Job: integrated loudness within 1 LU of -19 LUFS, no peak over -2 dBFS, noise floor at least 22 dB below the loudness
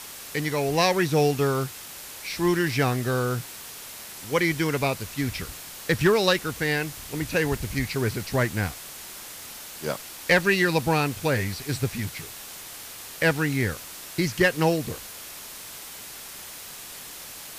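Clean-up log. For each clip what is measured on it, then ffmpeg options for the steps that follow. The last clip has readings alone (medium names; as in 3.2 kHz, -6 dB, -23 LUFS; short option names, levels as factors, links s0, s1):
noise floor -41 dBFS; noise floor target -47 dBFS; loudness -25.0 LUFS; peak level -10.0 dBFS; loudness target -19.0 LUFS
-> -af "afftdn=nr=6:nf=-41"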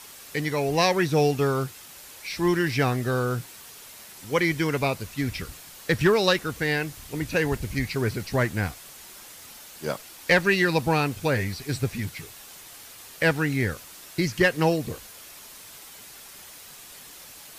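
noise floor -46 dBFS; noise floor target -47 dBFS
-> -af "afftdn=nr=6:nf=-46"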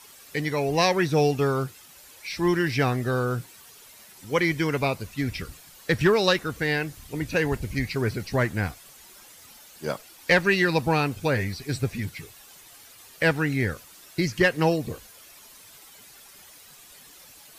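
noise floor -50 dBFS; loudness -25.0 LUFS; peak level -10.0 dBFS; loudness target -19.0 LUFS
-> -af "volume=2"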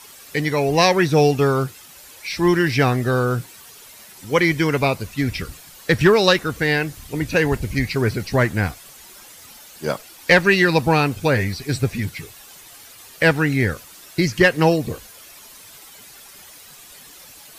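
loudness -19.0 LUFS; peak level -4.0 dBFS; noise floor -44 dBFS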